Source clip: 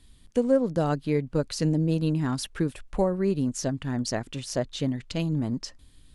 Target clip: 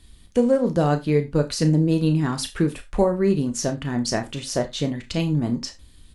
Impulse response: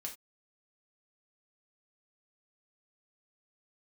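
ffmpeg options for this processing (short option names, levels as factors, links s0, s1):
-filter_complex "[0:a]asplit=2[s0][s1];[s1]adelay=34,volume=0.282[s2];[s0][s2]amix=inputs=2:normalize=0,asplit=2[s3][s4];[1:a]atrim=start_sample=2205[s5];[s4][s5]afir=irnorm=-1:irlink=0,volume=1.26[s6];[s3][s6]amix=inputs=2:normalize=0"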